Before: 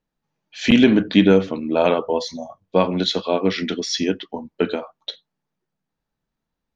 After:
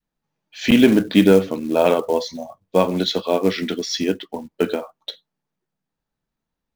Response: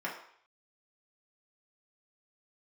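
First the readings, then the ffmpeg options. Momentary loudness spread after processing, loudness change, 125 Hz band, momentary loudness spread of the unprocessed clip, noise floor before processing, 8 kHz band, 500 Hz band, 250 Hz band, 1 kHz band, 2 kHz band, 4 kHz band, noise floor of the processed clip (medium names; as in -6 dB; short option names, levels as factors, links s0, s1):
18 LU, +0.5 dB, -0.5 dB, 17 LU, -82 dBFS, no reading, +1.5 dB, 0.0 dB, 0.0 dB, -1.0 dB, -1.0 dB, -83 dBFS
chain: -af "adynamicequalizer=threshold=0.0794:dfrequency=460:dqfactor=0.94:tfrequency=460:tqfactor=0.94:attack=5:release=100:ratio=0.375:range=1.5:mode=boostabove:tftype=bell,acrusher=bits=6:mode=log:mix=0:aa=0.000001,volume=0.891"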